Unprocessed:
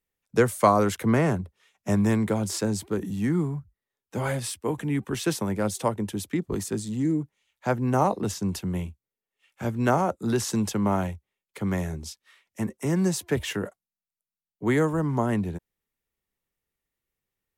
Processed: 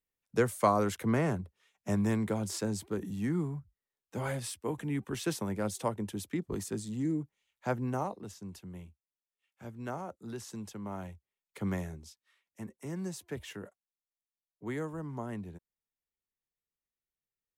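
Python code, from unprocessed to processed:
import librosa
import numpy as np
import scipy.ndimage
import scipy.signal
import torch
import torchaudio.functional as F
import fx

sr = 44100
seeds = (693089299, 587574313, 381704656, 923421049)

y = fx.gain(x, sr, db=fx.line((7.8, -7.0), (8.2, -16.5), (10.87, -16.5), (11.67, -5.5), (12.09, -14.0)))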